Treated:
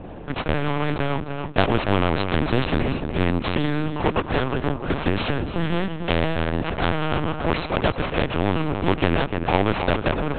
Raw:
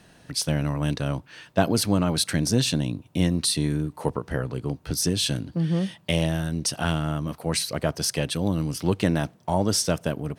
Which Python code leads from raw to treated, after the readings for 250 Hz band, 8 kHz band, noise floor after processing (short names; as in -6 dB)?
+1.5 dB, under -35 dB, -34 dBFS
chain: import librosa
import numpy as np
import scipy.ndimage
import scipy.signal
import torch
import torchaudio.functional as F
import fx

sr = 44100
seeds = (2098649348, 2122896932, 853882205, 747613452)

p1 = scipy.ndimage.median_filter(x, 25, mode='constant')
p2 = fx.high_shelf(p1, sr, hz=3100.0, db=-8.5)
p3 = p2 + fx.echo_feedback(p2, sr, ms=293, feedback_pct=31, wet_db=-12.0, dry=0)
p4 = fx.lpc_vocoder(p3, sr, seeds[0], excitation='pitch_kept', order=10)
p5 = fx.spectral_comp(p4, sr, ratio=2.0)
y = p5 * librosa.db_to_amplitude(4.5)